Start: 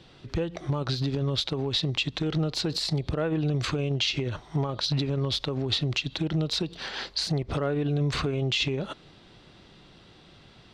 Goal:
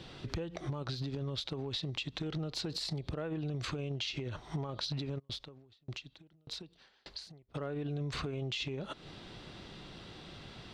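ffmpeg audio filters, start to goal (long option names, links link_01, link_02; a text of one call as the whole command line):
ffmpeg -i in.wav -filter_complex "[0:a]acompressor=threshold=-40dB:ratio=5,asplit=3[link_01][link_02][link_03];[link_01]afade=type=out:start_time=5.18:duration=0.02[link_04];[link_02]aeval=exprs='val(0)*pow(10,-37*if(lt(mod(1.7*n/s,1),2*abs(1.7)/1000),1-mod(1.7*n/s,1)/(2*abs(1.7)/1000),(mod(1.7*n/s,1)-2*abs(1.7)/1000)/(1-2*abs(1.7)/1000))/20)':channel_layout=same,afade=type=in:start_time=5.18:duration=0.02,afade=type=out:start_time=7.54:duration=0.02[link_05];[link_03]afade=type=in:start_time=7.54:duration=0.02[link_06];[link_04][link_05][link_06]amix=inputs=3:normalize=0,volume=3.5dB" out.wav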